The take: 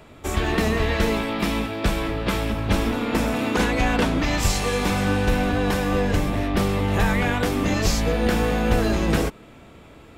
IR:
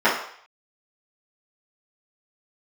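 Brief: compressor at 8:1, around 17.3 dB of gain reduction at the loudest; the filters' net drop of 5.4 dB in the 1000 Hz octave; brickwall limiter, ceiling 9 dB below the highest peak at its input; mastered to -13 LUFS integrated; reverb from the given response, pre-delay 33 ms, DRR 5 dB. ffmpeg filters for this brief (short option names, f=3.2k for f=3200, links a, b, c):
-filter_complex "[0:a]equalizer=f=1k:t=o:g=-7.5,acompressor=threshold=-34dB:ratio=8,alimiter=level_in=8dB:limit=-24dB:level=0:latency=1,volume=-8dB,asplit=2[a][b];[1:a]atrim=start_sample=2205,adelay=33[c];[b][c]afir=irnorm=-1:irlink=0,volume=-26.5dB[d];[a][d]amix=inputs=2:normalize=0,volume=28dB"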